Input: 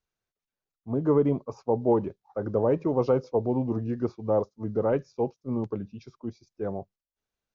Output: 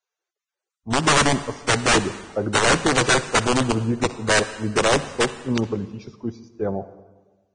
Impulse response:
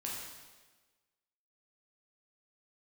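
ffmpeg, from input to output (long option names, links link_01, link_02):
-filter_complex "[0:a]dynaudnorm=framelen=110:gausssize=11:maxgain=3.5dB,aeval=exprs='(mod(5.31*val(0)+1,2)-1)/5.31':channel_layout=same,asplit=2[link_01][link_02];[1:a]atrim=start_sample=2205,adelay=61[link_03];[link_02][link_03]afir=irnorm=-1:irlink=0,volume=-14.5dB[link_04];[link_01][link_04]amix=inputs=2:normalize=0,volume=3dB" -ar 22050 -c:a libvorbis -b:a 16k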